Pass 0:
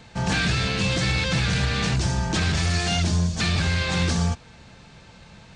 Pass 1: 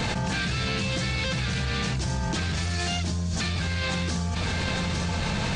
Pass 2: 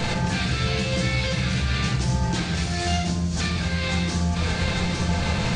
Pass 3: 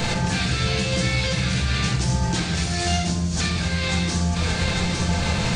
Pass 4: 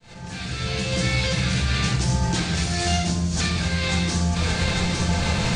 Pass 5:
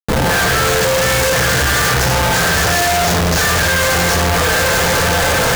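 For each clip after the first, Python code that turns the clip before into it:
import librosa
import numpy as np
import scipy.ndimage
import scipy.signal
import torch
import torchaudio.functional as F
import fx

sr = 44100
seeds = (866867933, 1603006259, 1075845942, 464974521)

y1 = x + 10.0 ** (-23.5 / 20.0) * np.pad(x, (int(857 * sr / 1000.0), 0))[:len(x)]
y1 = fx.env_flatten(y1, sr, amount_pct=100)
y1 = y1 * librosa.db_to_amplitude(-8.0)
y2 = fx.room_shoebox(y1, sr, seeds[0], volume_m3=170.0, walls='mixed', distance_m=0.79)
y3 = fx.high_shelf(y2, sr, hz=7100.0, db=8.5)
y3 = y3 * librosa.db_to_amplitude(1.0)
y4 = fx.fade_in_head(y3, sr, length_s=1.11)
y5 = np.repeat(y4[::4], 4)[:len(y4)]
y5 = fx.curve_eq(y5, sr, hz=(110.0, 180.0, 300.0, 460.0, 960.0, 1700.0, 2900.0, 6700.0, 10000.0), db=(0, -3, -17, 14, 8, 15, -11, 8, 3))
y5 = fx.schmitt(y5, sr, flips_db=-32.5)
y5 = y5 * librosa.db_to_amplitude(5.0)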